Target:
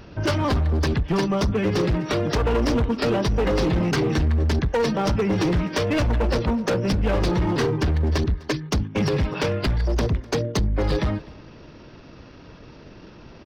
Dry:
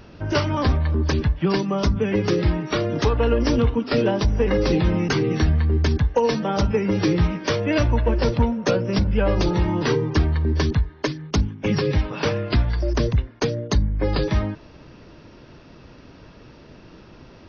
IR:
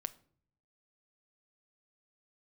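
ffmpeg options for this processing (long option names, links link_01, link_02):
-af "volume=19dB,asoftclip=hard,volume=-19dB,atempo=1.3,aecho=1:1:252:0.075,volume=1.5dB"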